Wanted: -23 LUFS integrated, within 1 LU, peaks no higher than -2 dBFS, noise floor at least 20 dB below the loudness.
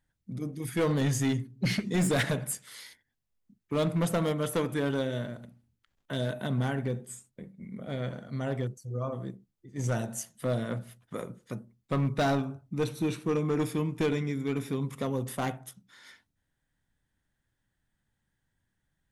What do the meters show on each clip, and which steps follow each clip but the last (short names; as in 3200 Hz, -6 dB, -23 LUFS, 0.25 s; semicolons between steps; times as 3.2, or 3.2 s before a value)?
clipped 1.6%; flat tops at -22.0 dBFS; loudness -31.5 LUFS; peak -22.0 dBFS; loudness target -23.0 LUFS
-> clip repair -22 dBFS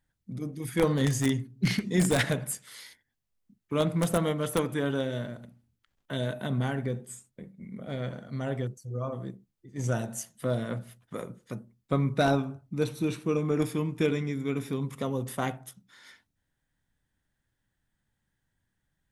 clipped 0.0%; loudness -30.0 LUFS; peak -13.0 dBFS; loudness target -23.0 LUFS
-> gain +7 dB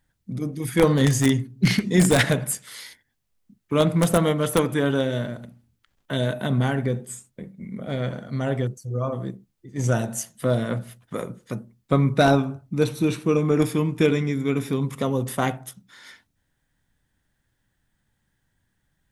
loudness -23.0 LUFS; peak -6.0 dBFS; noise floor -74 dBFS